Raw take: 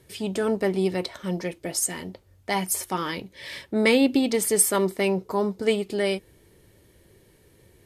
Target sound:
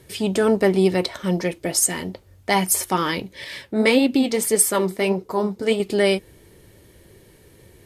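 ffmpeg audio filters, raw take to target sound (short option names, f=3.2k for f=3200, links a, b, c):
-filter_complex "[0:a]asettb=1/sr,asplit=3[a][b][c];[a]atrim=end=3.444[d];[b]atrim=start=3.44:end=5.8,asetpts=PTS-STARTPTS,afade=t=in:d=0.004:c=qsin,afade=t=out:st=2.356:d=0.004:c=qsin,flanger=delay=2.1:depth=9.2:regen=59:speed=1.7:shape=triangular[e];[c]atrim=start=5.796[f];[d][e]acrossfade=d=0.004:c1=hsin:c2=qsin[g];[g][f]acrossfade=d=0.004:c1=qsin:c2=hsin,volume=6.5dB"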